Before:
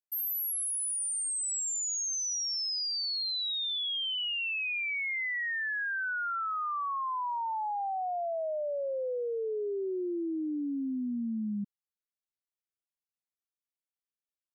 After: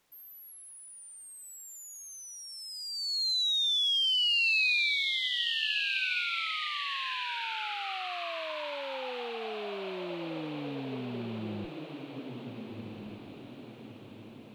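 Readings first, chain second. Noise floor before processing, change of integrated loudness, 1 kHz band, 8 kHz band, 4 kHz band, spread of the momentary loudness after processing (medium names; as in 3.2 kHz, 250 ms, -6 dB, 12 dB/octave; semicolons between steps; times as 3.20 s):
under -85 dBFS, +2.0 dB, -5.5 dB, -13.0 dB, +5.5 dB, 22 LU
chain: octave divider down 1 oct, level -4 dB; high-order bell 3.2 kHz +15.5 dB 1.1 oct; echo that smears into a reverb 1419 ms, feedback 52%, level -4.5 dB; word length cut 10-bit, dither triangular; treble shelf 4.7 kHz -11.5 dB; trim -6.5 dB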